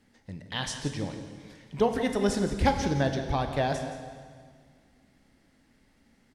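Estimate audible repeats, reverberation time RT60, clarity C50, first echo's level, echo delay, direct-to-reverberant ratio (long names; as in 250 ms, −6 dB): 1, 1.8 s, 6.5 dB, −12.5 dB, 170 ms, 5.5 dB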